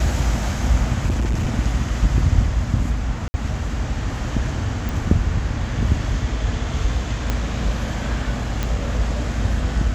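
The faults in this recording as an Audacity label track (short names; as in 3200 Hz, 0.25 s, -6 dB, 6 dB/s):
1.090000	1.570000	clipped -16.5 dBFS
3.280000	3.340000	gap 60 ms
4.890000	4.890000	pop
7.300000	7.300000	pop -7 dBFS
8.630000	8.630000	pop -9 dBFS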